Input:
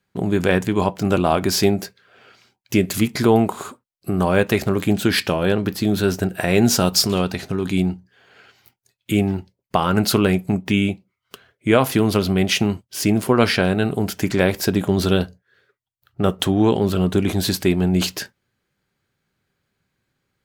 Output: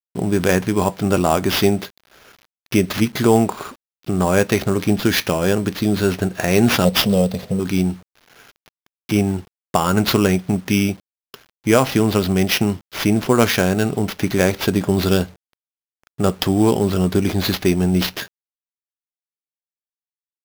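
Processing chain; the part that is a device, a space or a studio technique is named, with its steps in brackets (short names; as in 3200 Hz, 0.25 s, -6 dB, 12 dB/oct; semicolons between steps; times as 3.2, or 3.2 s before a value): 6.85–7.6 EQ curve 130 Hz 0 dB, 210 Hz +6 dB, 330 Hz -14 dB, 500 Hz +10 dB, 1400 Hz -19 dB, 4700 Hz -1 dB; early 8-bit sampler (sample-rate reducer 8300 Hz, jitter 0%; bit-crush 8-bit); gain +1 dB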